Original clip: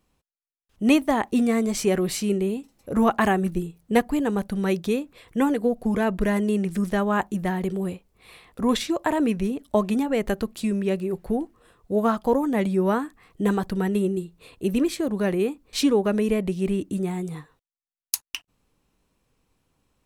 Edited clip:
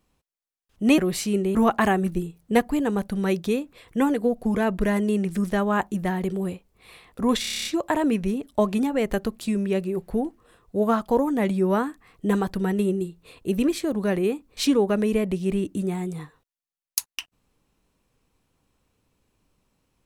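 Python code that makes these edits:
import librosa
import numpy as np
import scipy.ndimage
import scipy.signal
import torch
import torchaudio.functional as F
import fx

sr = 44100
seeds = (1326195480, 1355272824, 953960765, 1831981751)

y = fx.edit(x, sr, fx.cut(start_s=0.98, length_s=0.96),
    fx.cut(start_s=2.51, length_s=0.44),
    fx.stutter(start_s=8.81, slice_s=0.03, count=9), tone=tone)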